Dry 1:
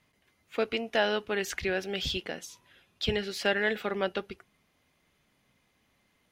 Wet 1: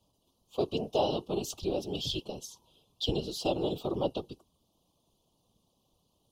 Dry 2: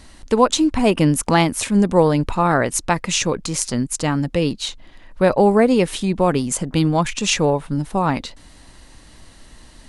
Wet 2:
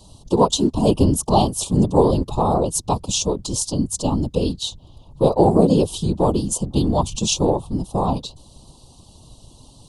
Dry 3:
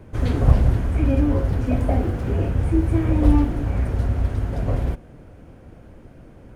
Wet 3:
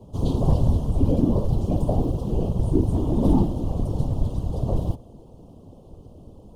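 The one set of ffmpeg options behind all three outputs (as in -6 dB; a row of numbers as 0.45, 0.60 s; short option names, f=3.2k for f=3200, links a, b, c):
-af "afreqshift=-38,asuperstop=centerf=1800:order=8:qfactor=0.89,afftfilt=real='hypot(re,im)*cos(2*PI*random(0))':imag='hypot(re,im)*sin(2*PI*random(1))':win_size=512:overlap=0.75,volume=5.5dB"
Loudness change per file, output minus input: -2.5, -1.0, -2.5 LU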